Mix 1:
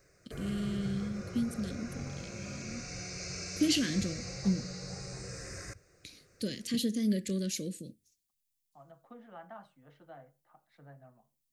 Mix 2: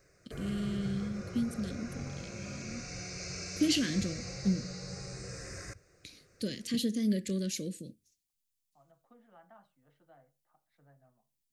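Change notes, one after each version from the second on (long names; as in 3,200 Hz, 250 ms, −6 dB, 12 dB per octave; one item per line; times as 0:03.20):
second voice −9.5 dB
master: add high-shelf EQ 9,700 Hz −3.5 dB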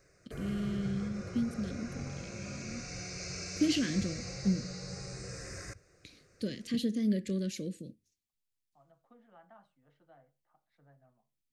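first voice: add high-shelf EQ 4,500 Hz −10.5 dB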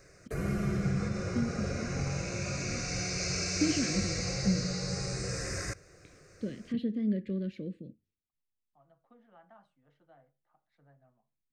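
first voice: add high-frequency loss of the air 460 metres
background +8.0 dB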